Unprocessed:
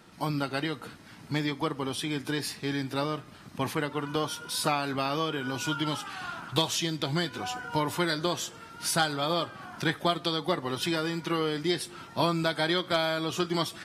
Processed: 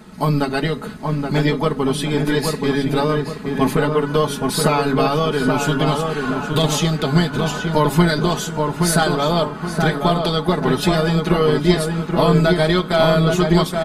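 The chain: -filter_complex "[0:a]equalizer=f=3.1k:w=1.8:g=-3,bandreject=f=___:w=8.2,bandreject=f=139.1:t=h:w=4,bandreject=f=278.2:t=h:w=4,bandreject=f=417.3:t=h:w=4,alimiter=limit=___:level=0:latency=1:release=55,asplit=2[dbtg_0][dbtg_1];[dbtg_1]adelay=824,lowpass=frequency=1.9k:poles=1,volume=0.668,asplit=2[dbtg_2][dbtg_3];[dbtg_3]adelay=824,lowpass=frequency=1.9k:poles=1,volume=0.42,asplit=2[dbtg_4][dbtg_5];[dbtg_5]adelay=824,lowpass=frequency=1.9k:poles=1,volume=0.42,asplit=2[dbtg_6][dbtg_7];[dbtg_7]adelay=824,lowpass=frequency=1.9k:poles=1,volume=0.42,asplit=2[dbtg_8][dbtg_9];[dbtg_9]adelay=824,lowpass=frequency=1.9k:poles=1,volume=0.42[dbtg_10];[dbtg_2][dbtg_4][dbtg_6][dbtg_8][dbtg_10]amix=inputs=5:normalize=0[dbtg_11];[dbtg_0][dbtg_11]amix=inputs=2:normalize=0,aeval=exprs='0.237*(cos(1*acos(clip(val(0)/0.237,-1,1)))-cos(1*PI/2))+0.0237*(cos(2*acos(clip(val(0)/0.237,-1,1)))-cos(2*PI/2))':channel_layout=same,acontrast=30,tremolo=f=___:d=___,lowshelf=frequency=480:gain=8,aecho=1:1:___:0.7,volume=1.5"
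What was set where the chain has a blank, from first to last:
5.5k, 0.158, 290, 0.333, 4.7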